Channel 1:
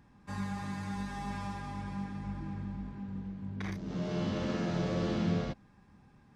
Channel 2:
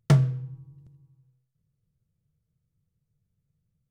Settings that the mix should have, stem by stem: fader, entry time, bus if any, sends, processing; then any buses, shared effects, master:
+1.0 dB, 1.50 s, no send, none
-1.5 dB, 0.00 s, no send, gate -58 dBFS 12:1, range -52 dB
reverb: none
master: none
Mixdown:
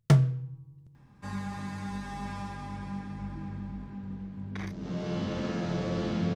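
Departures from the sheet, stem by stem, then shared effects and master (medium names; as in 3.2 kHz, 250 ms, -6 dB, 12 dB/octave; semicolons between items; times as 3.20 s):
stem 1: entry 1.50 s -> 0.95 s; stem 2: missing gate -58 dBFS 12:1, range -52 dB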